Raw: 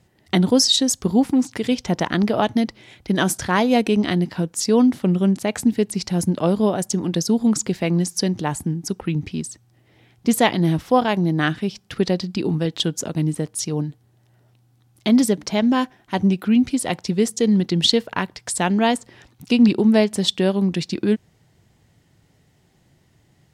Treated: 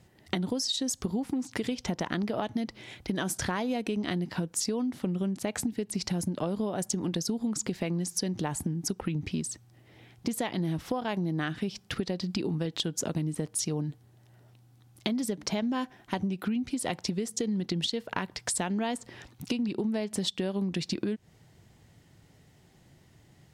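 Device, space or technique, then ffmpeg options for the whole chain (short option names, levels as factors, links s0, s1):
serial compression, peaks first: -af "acompressor=threshold=0.0708:ratio=6,acompressor=threshold=0.0398:ratio=3"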